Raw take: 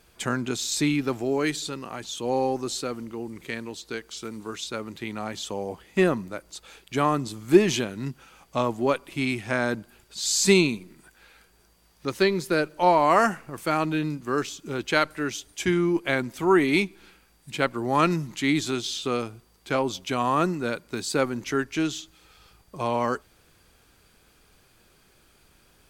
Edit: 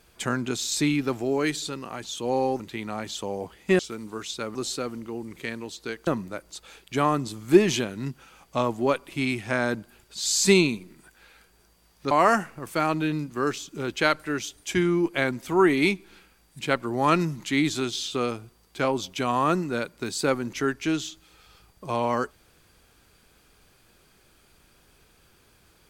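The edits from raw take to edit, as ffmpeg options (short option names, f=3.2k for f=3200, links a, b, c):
-filter_complex "[0:a]asplit=6[a][b][c][d][e][f];[a]atrim=end=2.602[g];[b]atrim=start=4.878:end=6.072[h];[c]atrim=start=4.118:end=4.882[i];[d]atrim=start=2.598:end=4.122[j];[e]atrim=start=6.068:end=12.112[k];[f]atrim=start=13.018[l];[g][h]acrossfade=d=0.004:c1=hsin:c2=hsin[m];[m][i]acrossfade=d=0.004:c1=hsin:c2=hsin[n];[n][j]acrossfade=d=0.004:c1=hsin:c2=hsin[o];[o][k]acrossfade=d=0.004:c1=hsin:c2=hsin[p];[p][l]acrossfade=d=0.004:c1=hsin:c2=hsin"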